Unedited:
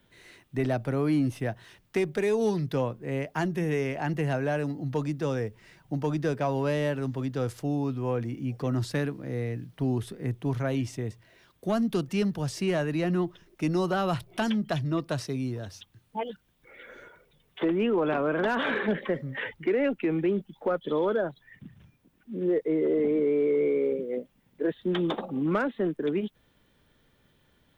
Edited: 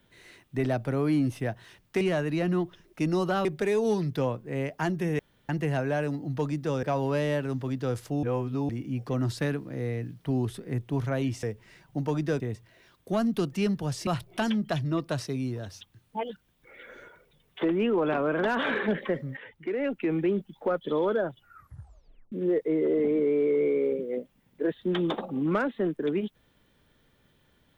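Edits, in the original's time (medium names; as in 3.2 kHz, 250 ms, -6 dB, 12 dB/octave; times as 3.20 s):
3.75–4.05 s: room tone
5.39–6.36 s: move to 10.96 s
7.76–8.22 s: reverse
12.63–14.07 s: move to 2.01 s
19.37–20.13 s: fade in, from -15.5 dB
21.26 s: tape stop 1.06 s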